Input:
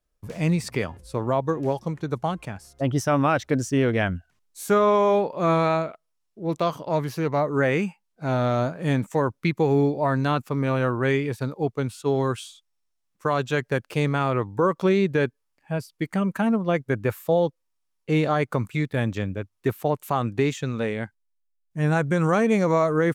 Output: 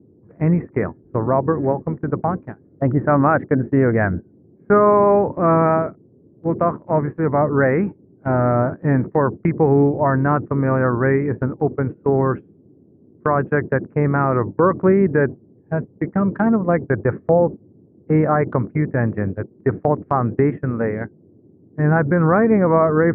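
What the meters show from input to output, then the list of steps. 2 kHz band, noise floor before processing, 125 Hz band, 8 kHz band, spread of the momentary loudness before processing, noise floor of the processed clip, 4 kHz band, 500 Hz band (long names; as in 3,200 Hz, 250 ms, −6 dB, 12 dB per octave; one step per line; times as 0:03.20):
+3.5 dB, −75 dBFS, +5.5 dB, below −40 dB, 10 LU, −52 dBFS, below −25 dB, +5.5 dB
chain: Butterworth low-pass 1,900 Hz 48 dB per octave
noise in a band 92–390 Hz −35 dBFS
noise gate −28 dBFS, range −21 dB
level +5.5 dB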